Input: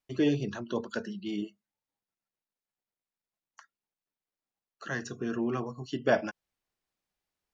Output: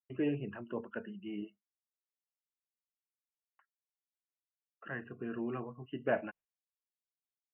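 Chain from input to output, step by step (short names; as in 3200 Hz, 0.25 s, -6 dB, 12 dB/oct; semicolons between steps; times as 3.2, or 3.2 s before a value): expander -46 dBFS; Chebyshev low-pass 2900 Hz, order 8; gain -6.5 dB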